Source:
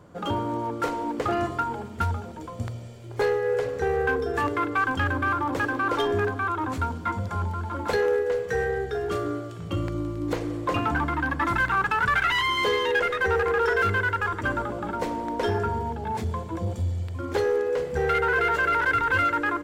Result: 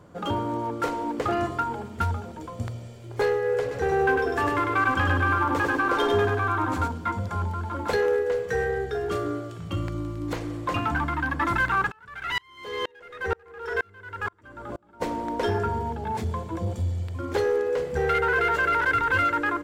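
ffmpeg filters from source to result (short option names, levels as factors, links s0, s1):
-filter_complex "[0:a]asettb=1/sr,asplit=3[s0][s1][s2];[s0]atrim=end=3.614[s3];[s1]atrim=start=3.61:end=6.88,asetpts=PTS-STARTPTS,afade=t=in:d=0.004:c=qsin,afade=t=out:st=3.266:d=0.004:c=qsin,aecho=1:1:100|200|300|400|500:0.708|0.29|0.119|0.0488|0.02,atrim=end_sample=144207[s4];[s2]atrim=start=6.876[s5];[s3][s4]acrossfade=d=0.004:c1=hsin:c2=qsin[s6];[s6][s5]acrossfade=d=0.004:c1=qsin:c2=hsin,asettb=1/sr,asplit=3[s7][s8][s9];[s7]atrim=end=9.584[s10];[s8]atrim=start=9.58:end=11.34,asetpts=PTS-STARTPTS,afade=t=in:d=0.004:c=qsin,afade=t=out:st=1.756:d=0.004:c=qsin,equalizer=f=440:w=1.5:g=-6[s11];[s9]atrim=start=11.336[s12];[s10][s11]acrossfade=d=0.004:c1=hsin:c2=qsin[s13];[s13][s12]acrossfade=d=0.004:c1=qsin:c2=hsin,asplit=3[s14][s15][s16];[s14]afade=t=out:st=11.9:d=0.02[s17];[s15]aeval=exprs='val(0)*pow(10,-36*if(lt(mod(-2.1*n/s,1),2*abs(-2.1)/1000),1-mod(-2.1*n/s,1)/(2*abs(-2.1)/1000),(mod(-2.1*n/s,1)-2*abs(-2.1)/1000)/(1-2*abs(-2.1)/1000))/20)':c=same,afade=t=in:st=11.9:d=0.02,afade=t=out:st=15:d=0.02[s18];[s16]afade=t=in:st=15:d=0.02[s19];[s17][s18][s19]amix=inputs=3:normalize=0"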